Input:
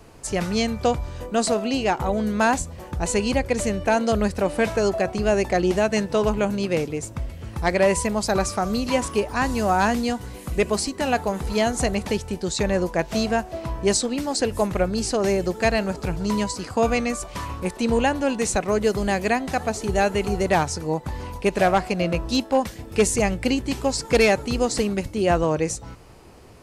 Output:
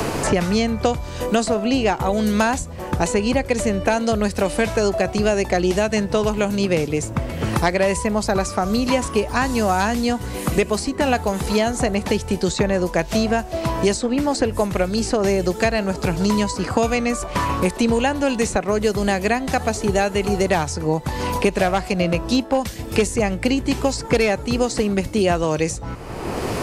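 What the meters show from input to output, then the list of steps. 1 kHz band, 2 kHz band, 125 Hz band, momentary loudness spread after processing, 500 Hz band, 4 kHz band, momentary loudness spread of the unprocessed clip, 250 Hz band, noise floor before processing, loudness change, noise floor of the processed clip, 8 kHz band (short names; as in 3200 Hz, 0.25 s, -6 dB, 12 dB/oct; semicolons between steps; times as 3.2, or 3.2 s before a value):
+2.0 dB, +2.0 dB, +4.0 dB, 4 LU, +2.0 dB, +2.5 dB, 7 LU, +3.5 dB, -41 dBFS, +2.5 dB, -32 dBFS, +0.5 dB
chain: three-band squash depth 100%; gain +1.5 dB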